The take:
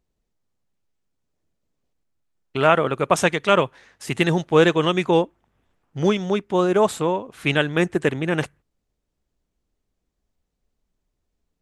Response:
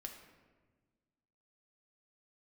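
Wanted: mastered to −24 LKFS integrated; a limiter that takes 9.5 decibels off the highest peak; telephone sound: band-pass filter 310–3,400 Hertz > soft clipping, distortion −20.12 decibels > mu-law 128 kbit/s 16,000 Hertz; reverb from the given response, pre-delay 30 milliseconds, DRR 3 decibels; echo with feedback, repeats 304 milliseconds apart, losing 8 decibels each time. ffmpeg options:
-filter_complex "[0:a]alimiter=limit=-10.5dB:level=0:latency=1,aecho=1:1:304|608|912|1216|1520:0.398|0.159|0.0637|0.0255|0.0102,asplit=2[link_01][link_02];[1:a]atrim=start_sample=2205,adelay=30[link_03];[link_02][link_03]afir=irnorm=-1:irlink=0,volume=1dB[link_04];[link_01][link_04]amix=inputs=2:normalize=0,highpass=310,lowpass=3400,asoftclip=threshold=-11.5dB" -ar 16000 -c:a pcm_mulaw

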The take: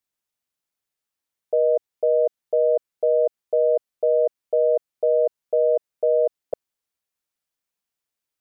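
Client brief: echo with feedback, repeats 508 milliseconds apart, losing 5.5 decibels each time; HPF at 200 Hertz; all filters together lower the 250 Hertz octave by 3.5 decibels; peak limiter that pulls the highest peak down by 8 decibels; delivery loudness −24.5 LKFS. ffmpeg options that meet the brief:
ffmpeg -i in.wav -af "highpass=200,equalizer=frequency=250:width_type=o:gain=-6.5,alimiter=limit=-21.5dB:level=0:latency=1,aecho=1:1:508|1016|1524|2032|2540|3048|3556:0.531|0.281|0.149|0.079|0.0419|0.0222|0.0118,volume=3dB" out.wav

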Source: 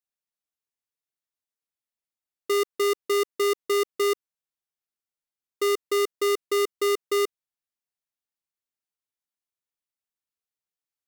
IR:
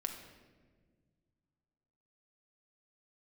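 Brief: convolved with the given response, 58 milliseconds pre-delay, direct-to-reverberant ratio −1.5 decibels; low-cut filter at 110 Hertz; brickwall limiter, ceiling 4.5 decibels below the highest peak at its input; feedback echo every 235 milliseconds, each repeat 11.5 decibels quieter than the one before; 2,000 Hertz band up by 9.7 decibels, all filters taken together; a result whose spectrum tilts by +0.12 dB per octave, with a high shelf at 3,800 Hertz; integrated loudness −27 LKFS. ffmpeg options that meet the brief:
-filter_complex "[0:a]highpass=110,equalizer=frequency=2000:width_type=o:gain=8.5,highshelf=frequency=3800:gain=6.5,alimiter=limit=-15dB:level=0:latency=1,aecho=1:1:235|470|705:0.266|0.0718|0.0194,asplit=2[link_01][link_02];[1:a]atrim=start_sample=2205,adelay=58[link_03];[link_02][link_03]afir=irnorm=-1:irlink=0,volume=1.5dB[link_04];[link_01][link_04]amix=inputs=2:normalize=0,volume=-2dB"

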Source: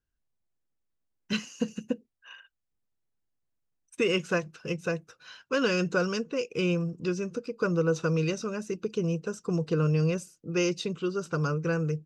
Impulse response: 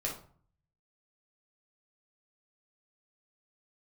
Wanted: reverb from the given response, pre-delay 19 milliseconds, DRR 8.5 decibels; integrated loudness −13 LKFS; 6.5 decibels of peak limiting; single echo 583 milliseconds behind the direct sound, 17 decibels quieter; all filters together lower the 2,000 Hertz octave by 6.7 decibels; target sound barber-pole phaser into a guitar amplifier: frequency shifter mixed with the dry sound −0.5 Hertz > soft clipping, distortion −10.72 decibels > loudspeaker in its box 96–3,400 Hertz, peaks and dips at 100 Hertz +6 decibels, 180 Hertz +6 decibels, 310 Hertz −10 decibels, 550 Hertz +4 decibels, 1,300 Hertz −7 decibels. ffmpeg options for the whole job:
-filter_complex "[0:a]equalizer=frequency=2000:width_type=o:gain=-7.5,alimiter=limit=-22dB:level=0:latency=1,aecho=1:1:583:0.141,asplit=2[link_01][link_02];[1:a]atrim=start_sample=2205,adelay=19[link_03];[link_02][link_03]afir=irnorm=-1:irlink=0,volume=-12dB[link_04];[link_01][link_04]amix=inputs=2:normalize=0,asplit=2[link_05][link_06];[link_06]afreqshift=-0.5[link_07];[link_05][link_07]amix=inputs=2:normalize=1,asoftclip=threshold=-32.5dB,highpass=96,equalizer=frequency=100:width_type=q:width=4:gain=6,equalizer=frequency=180:width_type=q:width=4:gain=6,equalizer=frequency=310:width_type=q:width=4:gain=-10,equalizer=frequency=550:width_type=q:width=4:gain=4,equalizer=frequency=1300:width_type=q:width=4:gain=-7,lowpass=frequency=3400:width=0.5412,lowpass=frequency=3400:width=1.3066,volume=24.5dB"

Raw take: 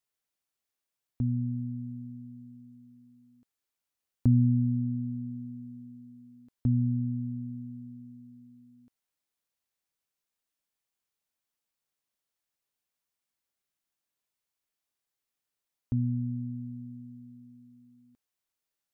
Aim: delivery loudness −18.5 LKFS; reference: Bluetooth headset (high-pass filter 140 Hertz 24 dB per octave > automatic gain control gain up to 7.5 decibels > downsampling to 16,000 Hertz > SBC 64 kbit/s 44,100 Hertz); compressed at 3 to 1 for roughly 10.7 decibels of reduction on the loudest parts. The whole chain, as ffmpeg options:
ffmpeg -i in.wav -af "acompressor=threshold=-33dB:ratio=3,highpass=frequency=140:width=0.5412,highpass=frequency=140:width=1.3066,dynaudnorm=maxgain=7.5dB,aresample=16000,aresample=44100,volume=21dB" -ar 44100 -c:a sbc -b:a 64k out.sbc

